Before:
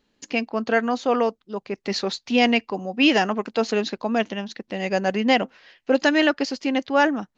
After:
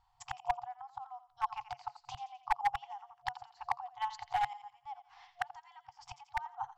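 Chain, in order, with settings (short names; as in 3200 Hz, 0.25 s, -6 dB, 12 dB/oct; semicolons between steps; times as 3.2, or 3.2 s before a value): flipped gate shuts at -15 dBFS, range -30 dB; EQ curve 340 Hz 0 dB, 540 Hz +13 dB, 930 Hz +5 dB, 1600 Hz -13 dB; thinning echo 93 ms, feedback 47%, high-pass 1100 Hz, level -10.5 dB; overloaded stage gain 15 dB; FFT band-reject 120–650 Hz; speed mistake 44.1 kHz file played as 48 kHz; gain +1 dB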